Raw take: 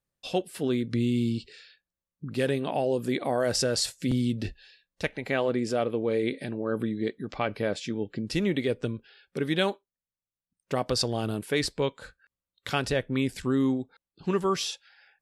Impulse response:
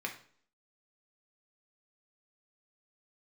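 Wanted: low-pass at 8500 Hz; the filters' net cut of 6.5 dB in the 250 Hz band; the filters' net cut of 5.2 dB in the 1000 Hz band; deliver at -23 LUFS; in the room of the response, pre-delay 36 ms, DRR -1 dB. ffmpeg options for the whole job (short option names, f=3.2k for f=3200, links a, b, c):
-filter_complex "[0:a]lowpass=8.5k,equalizer=f=250:t=o:g=-7.5,equalizer=f=1k:t=o:g=-7,asplit=2[a][b];[1:a]atrim=start_sample=2205,adelay=36[c];[b][c]afir=irnorm=-1:irlink=0,volume=-2dB[d];[a][d]amix=inputs=2:normalize=0,volume=6.5dB"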